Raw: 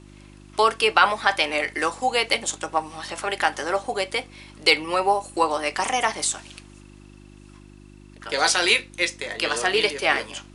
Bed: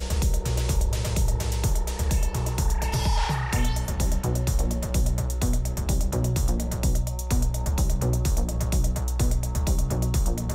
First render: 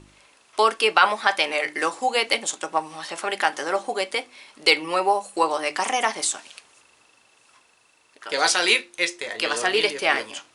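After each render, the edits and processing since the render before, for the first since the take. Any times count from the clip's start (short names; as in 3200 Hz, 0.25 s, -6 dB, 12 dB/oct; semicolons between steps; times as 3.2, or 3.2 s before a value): de-hum 50 Hz, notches 7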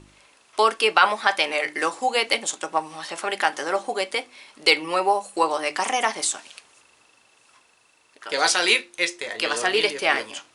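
nothing audible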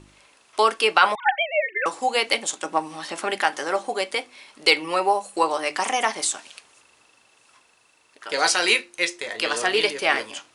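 1.15–1.86 sine-wave speech; 2.65–3.38 bell 250 Hz +9 dB; 8.33–9.03 notch 3500 Hz, Q 9.5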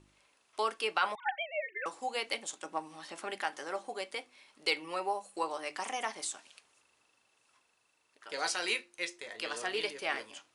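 gain -13.5 dB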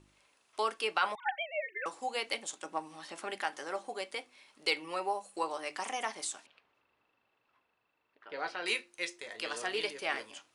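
6.46–8.66 air absorption 370 m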